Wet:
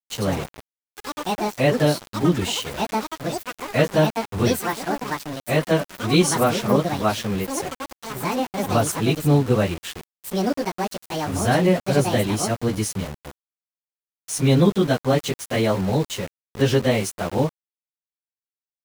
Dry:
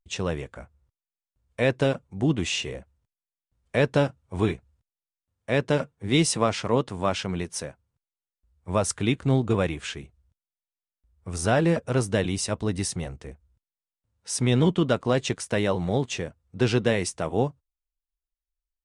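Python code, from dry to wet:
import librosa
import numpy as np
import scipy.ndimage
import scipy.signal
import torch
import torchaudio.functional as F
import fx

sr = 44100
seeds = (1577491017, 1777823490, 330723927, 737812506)

y = fx.pitch_bins(x, sr, semitones=1.5)
y = fx.echo_pitch(y, sr, ms=133, semitones=6, count=3, db_per_echo=-6.0)
y = np.where(np.abs(y) >= 10.0 ** (-36.0 / 20.0), y, 0.0)
y = y * 10.0 ** (6.0 / 20.0)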